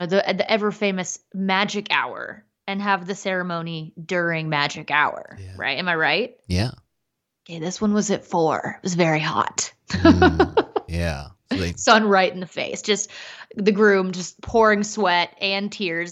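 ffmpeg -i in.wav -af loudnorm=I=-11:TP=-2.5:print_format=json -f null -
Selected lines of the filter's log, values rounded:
"input_i" : "-21.0",
"input_tp" : "-1.5",
"input_lra" : "4.7",
"input_thresh" : "-31.4",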